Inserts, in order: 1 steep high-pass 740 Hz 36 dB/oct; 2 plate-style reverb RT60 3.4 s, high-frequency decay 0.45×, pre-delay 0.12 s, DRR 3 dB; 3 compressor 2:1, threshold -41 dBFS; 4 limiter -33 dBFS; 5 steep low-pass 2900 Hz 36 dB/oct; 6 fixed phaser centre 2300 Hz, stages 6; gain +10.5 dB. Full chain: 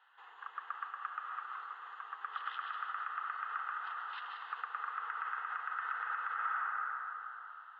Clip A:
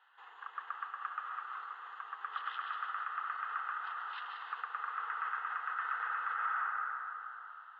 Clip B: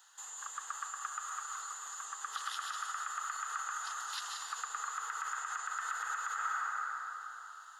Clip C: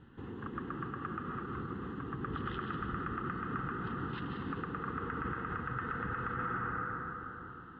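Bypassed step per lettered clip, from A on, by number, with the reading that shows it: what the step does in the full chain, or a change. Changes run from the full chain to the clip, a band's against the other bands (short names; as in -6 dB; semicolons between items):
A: 3, mean gain reduction 4.5 dB; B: 5, 4 kHz band +9.0 dB; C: 1, 500 Hz band +23.0 dB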